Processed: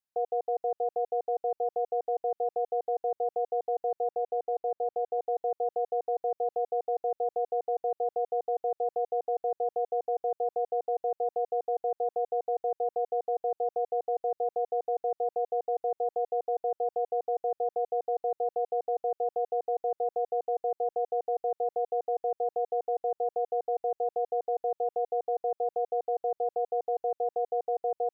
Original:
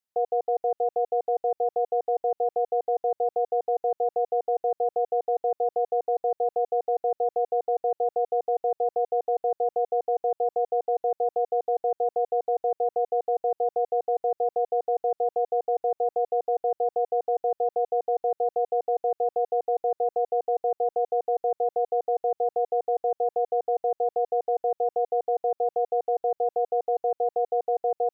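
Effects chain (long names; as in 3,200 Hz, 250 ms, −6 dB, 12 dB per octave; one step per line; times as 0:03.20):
0:04.10–0:05.19: high-frequency loss of the air 250 metres
level −4.5 dB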